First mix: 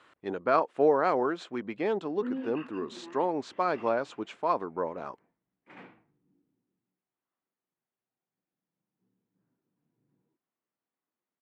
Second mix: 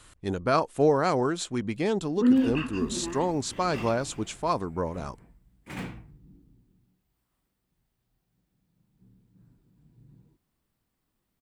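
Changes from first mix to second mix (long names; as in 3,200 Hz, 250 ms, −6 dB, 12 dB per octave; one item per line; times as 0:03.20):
background +8.5 dB
master: remove band-pass filter 330–2,300 Hz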